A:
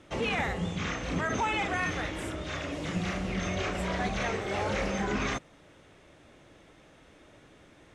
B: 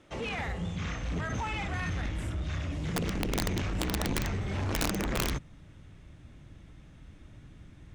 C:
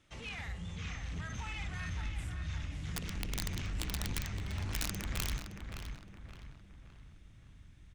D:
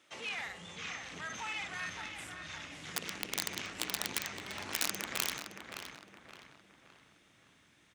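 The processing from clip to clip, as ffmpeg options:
ffmpeg -i in.wav -af "asubboost=boost=9.5:cutoff=160,aeval=exprs='0.335*(cos(1*acos(clip(val(0)/0.335,-1,1)))-cos(1*PI/2))+0.168*(cos(3*acos(clip(val(0)/0.335,-1,1)))-cos(3*PI/2))':channel_layout=same,aeval=exprs='(mod(11.9*val(0)+1,2)-1)/11.9':channel_layout=same,volume=2dB" out.wav
ffmpeg -i in.wav -filter_complex "[0:a]equalizer=frequency=470:width_type=o:width=2.9:gain=-13,asplit=2[link_01][link_02];[link_02]adelay=567,lowpass=frequency=3100:poles=1,volume=-6.5dB,asplit=2[link_03][link_04];[link_04]adelay=567,lowpass=frequency=3100:poles=1,volume=0.46,asplit=2[link_05][link_06];[link_06]adelay=567,lowpass=frequency=3100:poles=1,volume=0.46,asplit=2[link_07][link_08];[link_08]adelay=567,lowpass=frequency=3100:poles=1,volume=0.46,asplit=2[link_09][link_10];[link_10]adelay=567,lowpass=frequency=3100:poles=1,volume=0.46[link_11];[link_03][link_05][link_07][link_09][link_11]amix=inputs=5:normalize=0[link_12];[link_01][link_12]amix=inputs=2:normalize=0,volume=-3.5dB" out.wav
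ffmpeg -i in.wav -af "highpass=370,volume=5dB" out.wav

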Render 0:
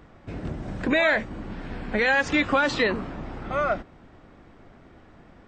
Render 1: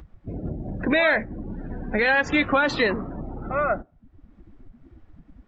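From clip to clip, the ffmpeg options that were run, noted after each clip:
ffmpeg -i in.wav -filter_complex "[0:a]afftdn=noise_reduction=27:noise_floor=-36,asplit=2[link_01][link_02];[link_02]acompressor=mode=upward:threshold=-27dB:ratio=2.5,volume=0.5dB[link_03];[link_01][link_03]amix=inputs=2:normalize=0,volume=-5dB" out.wav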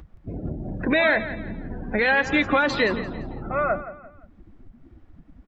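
ffmpeg -i in.wav -af "aecho=1:1:172|344|516:0.211|0.074|0.0259" out.wav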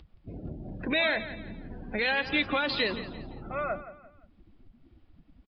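ffmpeg -i in.wav -af "aexciter=amount=4.3:drive=1.3:freq=2500,aresample=11025,aresample=44100,volume=-8.5dB" out.wav

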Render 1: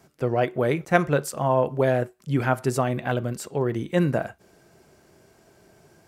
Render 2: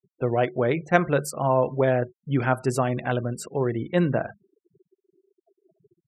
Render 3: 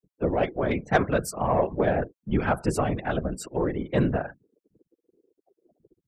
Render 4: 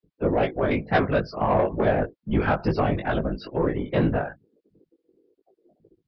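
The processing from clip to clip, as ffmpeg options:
ffmpeg -i in.wav -af "bandreject=frequency=50:width_type=h:width=6,bandreject=frequency=100:width_type=h:width=6,bandreject=frequency=150:width_type=h:width=6,bandreject=frequency=200:width_type=h:width=6,afftfilt=real='re*gte(hypot(re,im),0.0112)':imag='im*gte(hypot(re,im),0.0112)':win_size=1024:overlap=0.75" out.wav
ffmpeg -i in.wav -af "acontrast=61,afftfilt=real='hypot(re,im)*cos(2*PI*random(0))':imag='hypot(re,im)*sin(2*PI*random(1))':win_size=512:overlap=0.75,volume=-1.5dB" out.wav
ffmpeg -i in.wav -af "aresample=11025,asoftclip=type=tanh:threshold=-16dB,aresample=44100,flanger=delay=18:depth=2.1:speed=2.2,volume=6.5dB" out.wav

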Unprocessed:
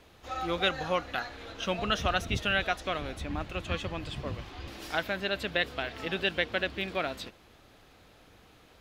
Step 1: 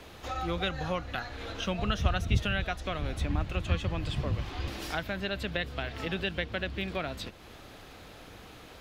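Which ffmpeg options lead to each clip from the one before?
ffmpeg -i in.wav -filter_complex "[0:a]acrossover=split=160[link_01][link_02];[link_02]acompressor=threshold=-49dB:ratio=2[link_03];[link_01][link_03]amix=inputs=2:normalize=0,volume=8.5dB" out.wav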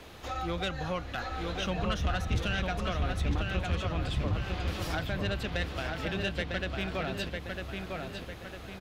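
ffmpeg -i in.wav -filter_complex "[0:a]asoftclip=type=tanh:threshold=-23dB,asplit=2[link_01][link_02];[link_02]adelay=952,lowpass=frequency=4100:poles=1,volume=-3.5dB,asplit=2[link_03][link_04];[link_04]adelay=952,lowpass=frequency=4100:poles=1,volume=0.49,asplit=2[link_05][link_06];[link_06]adelay=952,lowpass=frequency=4100:poles=1,volume=0.49,asplit=2[link_07][link_08];[link_08]adelay=952,lowpass=frequency=4100:poles=1,volume=0.49,asplit=2[link_09][link_10];[link_10]adelay=952,lowpass=frequency=4100:poles=1,volume=0.49,asplit=2[link_11][link_12];[link_12]adelay=952,lowpass=frequency=4100:poles=1,volume=0.49[link_13];[link_03][link_05][link_07][link_09][link_11][link_13]amix=inputs=6:normalize=0[link_14];[link_01][link_14]amix=inputs=2:normalize=0" out.wav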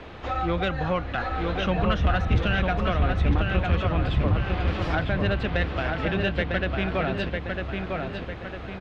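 ffmpeg -i in.wav -af "lowpass=2600,volume=8dB" out.wav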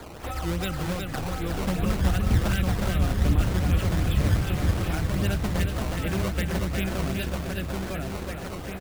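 ffmpeg -i in.wav -filter_complex "[0:a]acrossover=split=330|2300[link_01][link_02][link_03];[link_02]acompressor=threshold=-36dB:ratio=6[link_04];[link_01][link_04][link_03]amix=inputs=3:normalize=0,acrusher=samples=15:mix=1:aa=0.000001:lfo=1:lforange=24:lforate=2.6,aecho=1:1:365:0.562" out.wav

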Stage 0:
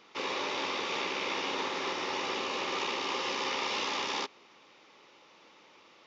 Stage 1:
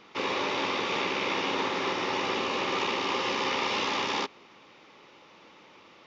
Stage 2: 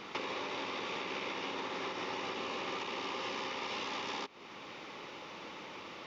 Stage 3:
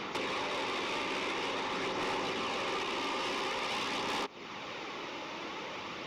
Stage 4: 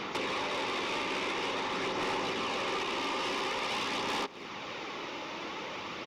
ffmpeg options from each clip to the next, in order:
ffmpeg -i in.wav -af "bass=frequency=250:gain=6,treble=frequency=4000:gain=-5,volume=4.5dB" out.wav
ffmpeg -i in.wav -af "alimiter=level_in=2dB:limit=-24dB:level=0:latency=1:release=463,volume=-2dB,acompressor=threshold=-44dB:ratio=5,volume=7dB" out.wav
ffmpeg -i in.wav -af "aphaser=in_gain=1:out_gain=1:delay=3.3:decay=0.26:speed=0.48:type=sinusoidal,aeval=exprs='0.0531*(cos(1*acos(clip(val(0)/0.0531,-1,1)))-cos(1*PI/2))+0.0106*(cos(5*acos(clip(val(0)/0.0531,-1,1)))-cos(5*PI/2))':channel_layout=same" out.wav
ffmpeg -i in.wav -af "aecho=1:1:253:0.0794,volume=1.5dB" out.wav

